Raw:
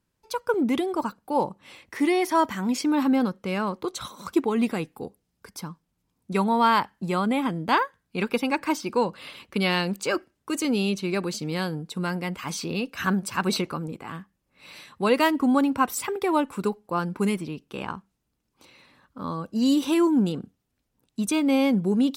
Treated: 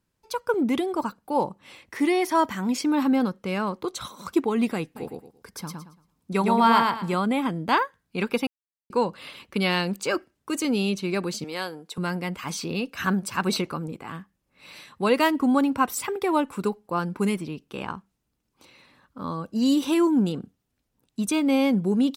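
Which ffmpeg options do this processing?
ffmpeg -i in.wav -filter_complex "[0:a]asplit=3[link_01][link_02][link_03];[link_01]afade=type=out:start_time=4.95:duration=0.02[link_04];[link_02]aecho=1:1:113|226|339|452:0.708|0.184|0.0479|0.0124,afade=type=in:start_time=4.95:duration=0.02,afade=type=out:start_time=7.13:duration=0.02[link_05];[link_03]afade=type=in:start_time=7.13:duration=0.02[link_06];[link_04][link_05][link_06]amix=inputs=3:normalize=0,asettb=1/sr,asplit=3[link_07][link_08][link_09];[link_07]atrim=end=11.444[link_10];[link_08]atrim=start=11.44:end=11.98,asetpts=PTS-STARTPTS,afade=type=in:duration=0.004:curve=qsin,afade=type=out:start_time=0.536:duration=0.004:curve=qsin,highpass=410[link_11];[link_09]atrim=start=11.976[link_12];[link_10][link_11]acrossfade=duration=0.004:curve1=hsin:curve2=qsin[link_13];[link_13][link_12]acrossfade=duration=0.004:curve1=qsin:curve2=hsin,asplit=3[link_14][link_15][link_16];[link_14]atrim=end=8.47,asetpts=PTS-STARTPTS,afade=type=out:start_time=8.466:duration=0.004:curve=hsin[link_17];[link_15]atrim=start=8.47:end=8.9,asetpts=PTS-STARTPTS,volume=0[link_18];[link_16]atrim=start=8.9,asetpts=PTS-STARTPTS,afade=type=in:duration=0.004:curve=hsin[link_19];[link_17][link_18][link_19]concat=n=3:v=0:a=1" out.wav

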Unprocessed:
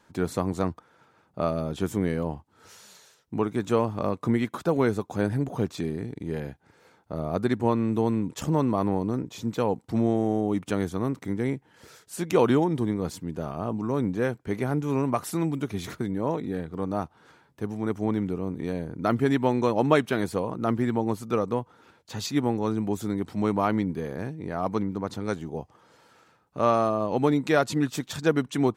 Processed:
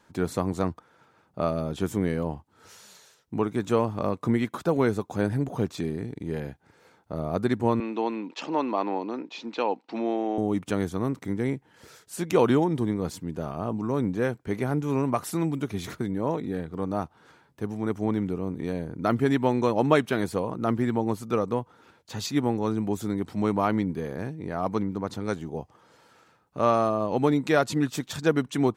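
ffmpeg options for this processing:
ffmpeg -i in.wav -filter_complex "[0:a]asettb=1/sr,asplit=3[link_01][link_02][link_03];[link_01]atrim=end=7.804[link_04];[link_02]atrim=start=7.8:end=10.38,asetpts=PTS-STARTPTS,afade=type=in:duration=0.004:curve=qsin,afade=type=out:start_time=2.576:duration=0.004:curve=qsin,highpass=frequency=280:width=0.5412,highpass=frequency=280:width=1.3066,equalizer=frequency=430:width_type=q:width=4:gain=-4,equalizer=frequency=860:width_type=q:width=4:gain=4,equalizer=frequency=2600:width_type=q:width=4:gain=9,equalizer=frequency=4200:width_type=q:width=4:gain=4,lowpass=frequency=5200:width=0.5412,lowpass=frequency=5200:width=1.3066[link_05];[link_03]atrim=start=10.376[link_06];[link_04][link_05]acrossfade=duration=0.004:curve1=hsin:curve2=qsin[link_07];[link_07][link_06]acrossfade=duration=0.004:curve1=qsin:curve2=hsin" out.wav

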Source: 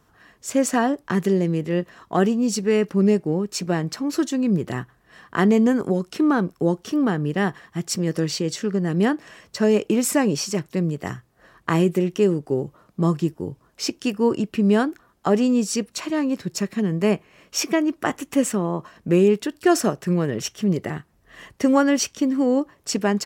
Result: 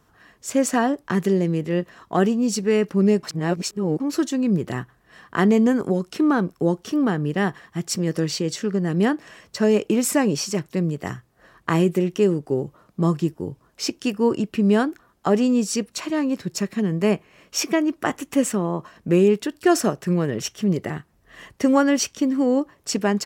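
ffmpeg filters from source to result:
ffmpeg -i in.wav -filter_complex "[0:a]asplit=3[link_01][link_02][link_03];[link_01]atrim=end=3.232[link_04];[link_02]atrim=start=3.228:end=4.002,asetpts=PTS-STARTPTS,areverse[link_05];[link_03]atrim=start=3.998[link_06];[link_04][link_05]acrossfade=duration=0.004:curve1=hsin:curve2=hsin[link_07];[link_07][link_06]acrossfade=duration=0.004:curve1=hsin:curve2=hsin" out.wav

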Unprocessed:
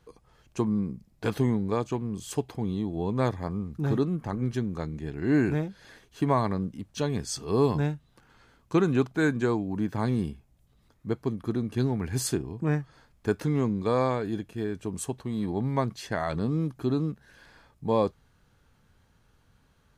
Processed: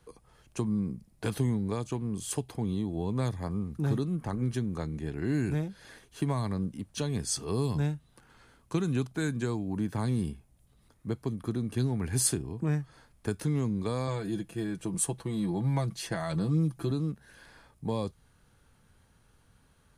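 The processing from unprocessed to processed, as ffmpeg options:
ffmpeg -i in.wav -filter_complex "[0:a]asettb=1/sr,asplit=3[link_01][link_02][link_03];[link_01]atrim=end=14.074[link_04];[link_02]atrim=start=14.07:end=16.91,asetpts=PTS-STARTPTS,afade=type=in:duration=0.004:curve=qsin,afade=type=out:start_time=2.836:duration=0.004:curve=qsin,aecho=1:1:6:0.66,atrim=end_sample=125244[link_05];[link_03]atrim=start=16.906[link_06];[link_04][link_05]acrossfade=duration=0.004:curve1=hsin:curve2=qsin[link_07];[link_07][link_06]acrossfade=duration=0.004:curve1=qsin:curve2=hsin,equalizer=frequency=9600:width=2.8:gain=10.5,acrossover=split=190|3000[link_08][link_09][link_10];[link_09]acompressor=threshold=-32dB:ratio=6[link_11];[link_08][link_11][link_10]amix=inputs=3:normalize=0" out.wav

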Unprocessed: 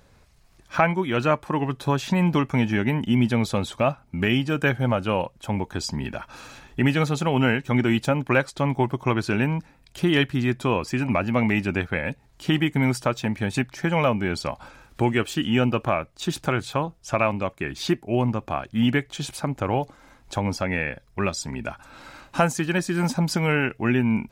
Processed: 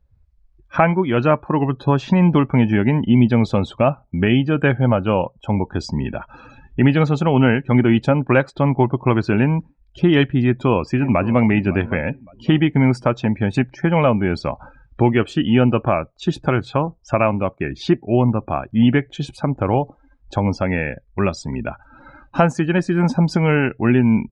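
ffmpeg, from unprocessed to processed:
ffmpeg -i in.wav -filter_complex "[0:a]asplit=2[link_01][link_02];[link_02]afade=type=in:start_time=10.38:duration=0.01,afade=type=out:start_time=11.45:duration=0.01,aecho=0:1:560|1120|1680:0.149624|0.0523682|0.0183289[link_03];[link_01][link_03]amix=inputs=2:normalize=0,afftdn=noise_reduction=26:noise_floor=-41,lowpass=4100,equalizer=frequency=2600:width_type=o:width=2.8:gain=-5.5,volume=7dB" out.wav

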